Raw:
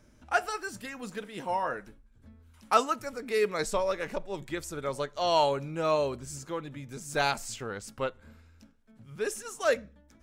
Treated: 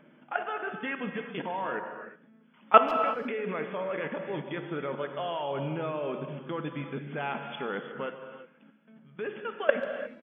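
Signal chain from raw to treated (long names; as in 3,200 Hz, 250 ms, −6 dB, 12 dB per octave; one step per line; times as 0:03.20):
output level in coarse steps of 21 dB
brick-wall band-pass 130–3,500 Hz
far-end echo of a speakerphone 140 ms, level −20 dB
reverb whose tail is shaped and stops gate 380 ms flat, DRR 5.5 dB
level +9 dB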